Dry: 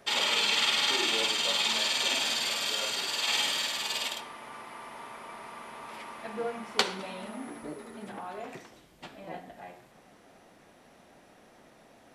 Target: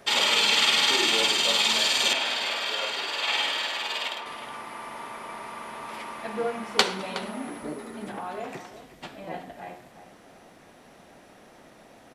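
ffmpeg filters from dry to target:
ffmpeg -i in.wav -filter_complex "[0:a]asettb=1/sr,asplit=3[link_01][link_02][link_03];[link_01]atrim=end=2.134[link_04];[link_02]atrim=start=2.13:end=4.26,asetpts=PTS-STARTPTS,afade=type=in:duration=0.004:curve=qsin,afade=type=out:start_time=2.126:duration=0.004:curve=qsin,acrossover=split=310 3700:gain=0.224 1 0.2[link_05][link_06][link_07];[link_05][link_06][link_07]amix=inputs=3:normalize=0[link_08];[link_03]atrim=start=4.256[link_09];[link_04][link_08]acrossfade=duration=0.004:curve1=hsin:curve2=qsin[link_10];[link_10][link_09]acrossfade=duration=0.004:curve1=qsin:curve2=hsin,asplit=2[link_11][link_12];[link_12]adelay=367.3,volume=-12dB,highshelf=frequency=4000:gain=-8.27[link_13];[link_11][link_13]amix=inputs=2:normalize=0,volume=5dB" out.wav

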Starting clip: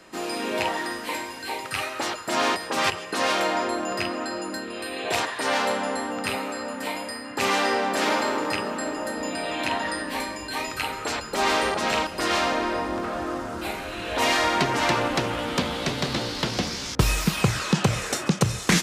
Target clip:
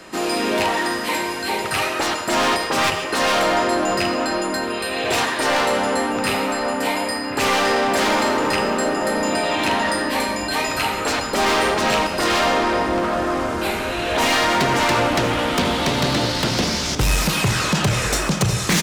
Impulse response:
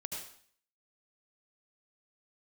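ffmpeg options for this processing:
-filter_complex "[0:a]acontrast=62,asoftclip=type=tanh:threshold=-17dB,asplit=2[link_01][link_02];[link_02]adelay=1050,volume=-9dB,highshelf=frequency=4000:gain=-23.6[link_03];[link_01][link_03]amix=inputs=2:normalize=0,asplit=2[link_04][link_05];[1:a]atrim=start_sample=2205[link_06];[link_05][link_06]afir=irnorm=-1:irlink=0,volume=-5.5dB[link_07];[link_04][link_07]amix=inputs=2:normalize=0"

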